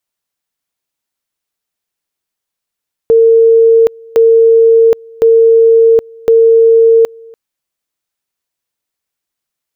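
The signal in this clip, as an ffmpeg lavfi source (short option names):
-f lavfi -i "aevalsrc='pow(10,(-3-28*gte(mod(t,1.06),0.77))/20)*sin(2*PI*455*t)':d=4.24:s=44100"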